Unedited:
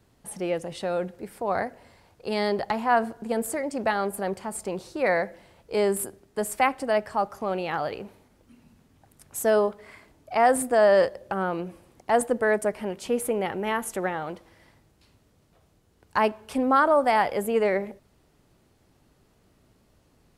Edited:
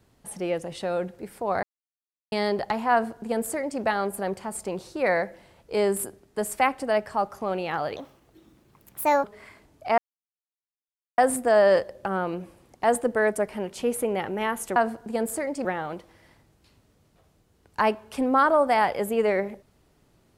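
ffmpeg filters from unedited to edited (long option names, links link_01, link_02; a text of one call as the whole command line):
ffmpeg -i in.wav -filter_complex "[0:a]asplit=8[link_01][link_02][link_03][link_04][link_05][link_06][link_07][link_08];[link_01]atrim=end=1.63,asetpts=PTS-STARTPTS,afade=type=out:start_time=1.626:duration=0.004:curve=hsin[link_09];[link_02]atrim=start=1.63:end=2.32,asetpts=PTS-STARTPTS,volume=0[link_10];[link_03]atrim=start=2.32:end=7.964,asetpts=PTS-STARTPTS,afade=type=in:duration=0.004:curve=hsin[link_11];[link_04]atrim=start=7.96:end=9.7,asetpts=PTS-STARTPTS,asetrate=59976,aresample=44100,atrim=end_sample=56422,asetpts=PTS-STARTPTS[link_12];[link_05]atrim=start=9.696:end=10.44,asetpts=PTS-STARTPTS,afade=type=out:start_time=0.74:duration=0.004:curve=hsin,apad=pad_dur=1.2[link_13];[link_06]atrim=start=10.44:end=14.022,asetpts=PTS-STARTPTS,afade=type=in:duration=0.004:curve=hsin[link_14];[link_07]atrim=start=2.918:end=3.812[link_15];[link_08]atrim=start=14.018[link_16];[link_09][link_10][link_11]concat=n=3:v=0:a=1[link_17];[link_17][link_12]acrossfade=duration=0.004:curve1=hsin:curve2=hsin[link_18];[link_13][link_14]concat=n=2:v=0:a=1[link_19];[link_18][link_19]acrossfade=duration=0.004:curve1=hsin:curve2=hsin[link_20];[link_20][link_15]acrossfade=duration=0.004:curve1=hsin:curve2=hsin[link_21];[link_21][link_16]acrossfade=duration=0.004:curve1=hsin:curve2=hsin" out.wav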